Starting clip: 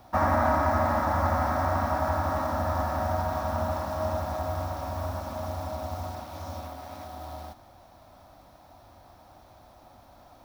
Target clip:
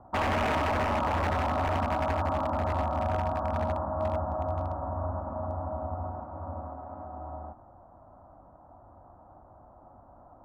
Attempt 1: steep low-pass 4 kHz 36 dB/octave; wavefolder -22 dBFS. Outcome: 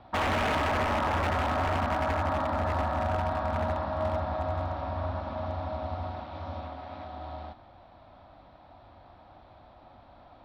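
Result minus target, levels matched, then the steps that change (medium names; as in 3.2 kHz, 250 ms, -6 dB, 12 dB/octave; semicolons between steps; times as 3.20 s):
4 kHz band +3.0 dB
change: steep low-pass 1.3 kHz 36 dB/octave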